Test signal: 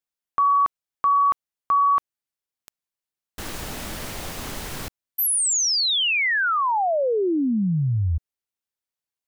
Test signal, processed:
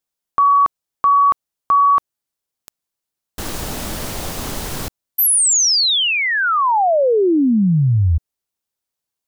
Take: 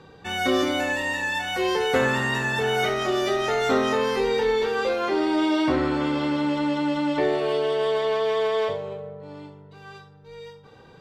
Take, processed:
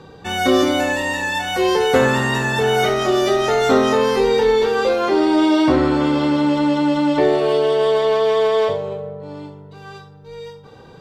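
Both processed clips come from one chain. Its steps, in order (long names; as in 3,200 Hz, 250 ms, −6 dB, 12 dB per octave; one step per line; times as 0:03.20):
parametric band 2,100 Hz −4.5 dB 1.4 octaves
level +7.5 dB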